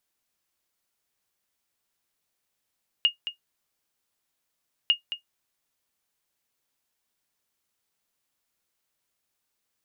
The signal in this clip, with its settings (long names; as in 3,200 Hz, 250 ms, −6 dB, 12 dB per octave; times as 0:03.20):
ping with an echo 2,850 Hz, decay 0.12 s, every 1.85 s, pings 2, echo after 0.22 s, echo −11.5 dB −11.5 dBFS